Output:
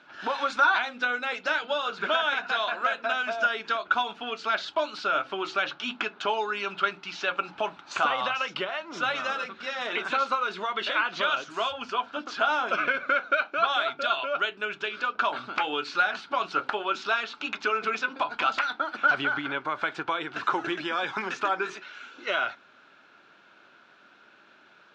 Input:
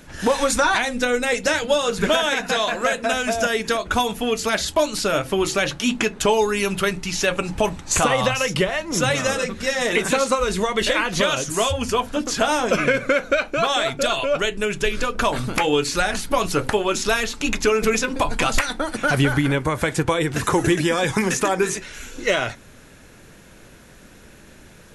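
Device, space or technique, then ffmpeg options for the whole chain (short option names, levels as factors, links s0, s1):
phone earpiece: -af "highpass=460,equalizer=f=490:t=q:w=4:g=-10,equalizer=f=1400:t=q:w=4:g=9,equalizer=f=1900:t=q:w=4:g=-8,lowpass=f=4000:w=0.5412,lowpass=f=4000:w=1.3066,volume=0.531"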